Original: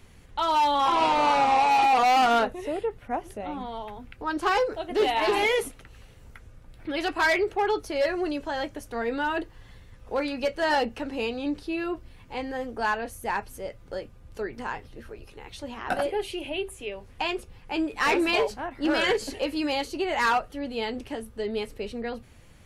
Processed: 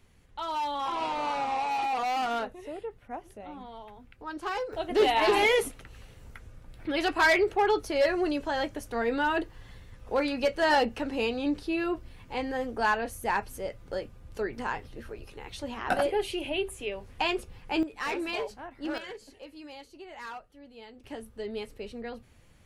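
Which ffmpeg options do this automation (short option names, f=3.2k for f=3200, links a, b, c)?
-af "asetnsamples=n=441:p=0,asendcmd='4.73 volume volume 0.5dB;17.83 volume volume -9dB;18.98 volume volume -18dB;21.04 volume volume -6dB',volume=-9dB"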